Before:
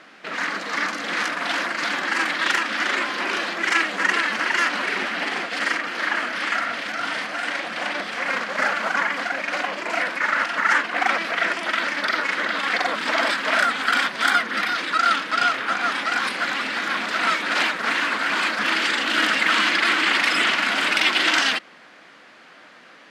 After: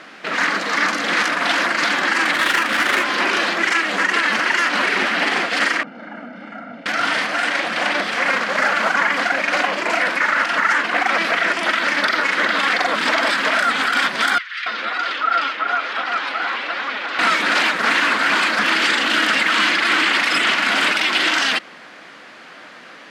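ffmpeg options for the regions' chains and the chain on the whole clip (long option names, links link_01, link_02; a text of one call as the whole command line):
ffmpeg -i in.wav -filter_complex "[0:a]asettb=1/sr,asplit=3[link_01][link_02][link_03];[link_01]atrim=end=2.324[link_04];[link_02]atrim=start=2.32:end=3.04,asetpts=PTS-STARTPTS,afade=type=in:duration=0.004:curve=qsin,afade=type=out:start_time=0.716:duration=0.004:curve=qsin,asplit=2[link_05][link_06];[link_06]adelay=17,volume=-13.5dB[link_07];[link_05][link_07]amix=inputs=2:normalize=0,atrim=end_sample=31752,adynamicsmooth=sensitivity=4:basefreq=1900[link_08];[link_03]atrim=start=3.036[link_09];[link_04][link_08]acrossfade=duration=0.004:curve1=hsin:curve2=qsin[link_10];[link_10][link_09]acrossfade=duration=0.004:curve1=qsin:curve2=hsin,asettb=1/sr,asplit=3[link_11][link_12][link_13];[link_11]atrim=end=5.834[link_14];[link_12]atrim=start=5.83:end=6.86,asetpts=PTS-STARTPTS,afade=type=in:duration=0.004:curve=qsin,afade=type=out:start_time=1.026:duration=0.004:curve=qsin,bandpass=frequency=240:width_type=q:width=2.2,aecho=1:1:1.4:0.73,atrim=end_sample=45423[link_15];[link_13]atrim=start=6.856[link_16];[link_14][link_15]acrossfade=duration=0.004:curve1=hsin:curve2=qsin[link_17];[link_17][link_16]acrossfade=duration=0.004:curve1=qsin:curve2=hsin,asettb=1/sr,asplit=3[link_18][link_19][link_20];[link_18]atrim=end=14.384[link_21];[link_19]atrim=start=14.38:end=17.19,asetpts=PTS-STARTPTS,afade=type=in:duration=0.004:curve=qsin,afade=type=out:start_time=2.806:duration=0.004:curve=qsin,highpass=410,lowpass=3400,acrossover=split=1700[link_22][link_23];[link_22]adelay=280[link_24];[link_24][link_23]amix=inputs=2:normalize=0,atrim=end_sample=123921,flanger=delay=3.3:depth=6.8:regen=41:speed=1.2:shape=triangular[link_25];[link_20]atrim=start=17.186[link_26];[link_21][link_25]acrossfade=duration=0.004:curve1=hsin:curve2=qsin[link_27];[link_27][link_26]acrossfade=duration=0.004:curve1=qsin:curve2=hsin,alimiter=limit=-14dB:level=0:latency=1:release=108,acontrast=86" out.wav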